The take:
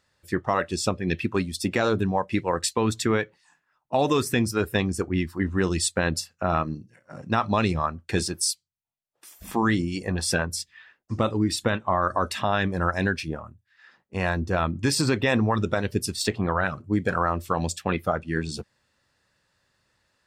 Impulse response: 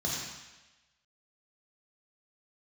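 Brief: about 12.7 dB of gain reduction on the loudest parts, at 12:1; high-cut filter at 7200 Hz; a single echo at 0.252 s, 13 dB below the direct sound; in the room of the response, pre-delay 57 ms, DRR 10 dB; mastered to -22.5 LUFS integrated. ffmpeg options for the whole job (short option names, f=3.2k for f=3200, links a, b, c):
-filter_complex "[0:a]lowpass=7.2k,acompressor=threshold=-31dB:ratio=12,aecho=1:1:252:0.224,asplit=2[a][b];[1:a]atrim=start_sample=2205,adelay=57[c];[b][c]afir=irnorm=-1:irlink=0,volume=-16.5dB[d];[a][d]amix=inputs=2:normalize=0,volume=13dB"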